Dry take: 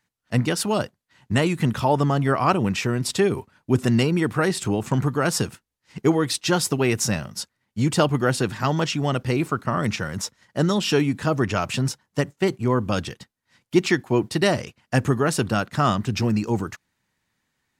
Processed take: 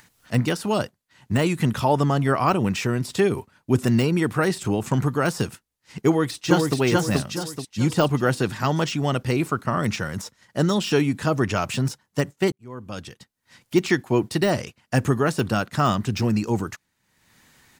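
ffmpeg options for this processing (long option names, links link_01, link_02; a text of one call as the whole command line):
ffmpeg -i in.wav -filter_complex "[0:a]asplit=2[link_01][link_02];[link_02]afade=type=in:start_time=6.07:duration=0.01,afade=type=out:start_time=6.78:duration=0.01,aecho=0:1:430|860|1290|1720|2150:0.891251|0.3565|0.1426|0.0570401|0.022816[link_03];[link_01][link_03]amix=inputs=2:normalize=0,asplit=2[link_04][link_05];[link_04]atrim=end=12.52,asetpts=PTS-STARTPTS,afade=type=out:start_time=12.516:duration=0.004:curve=hsin[link_06];[link_05]atrim=start=12.52,asetpts=PTS-STARTPTS,afade=type=in:duration=1.39[link_07];[link_06][link_07]concat=n=2:v=0:a=1,deesser=0.65,highshelf=frequency=5800:gain=4.5,acompressor=mode=upward:threshold=-40dB:ratio=2.5" out.wav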